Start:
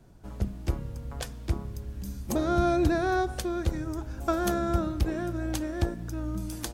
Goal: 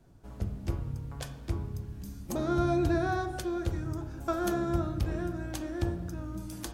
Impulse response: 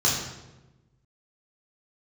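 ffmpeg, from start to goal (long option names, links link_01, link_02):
-filter_complex "[0:a]asplit=2[link_01][link_02];[1:a]atrim=start_sample=2205,lowpass=2700,adelay=10[link_03];[link_02][link_03]afir=irnorm=-1:irlink=0,volume=-19dB[link_04];[link_01][link_04]amix=inputs=2:normalize=0,volume=-5dB"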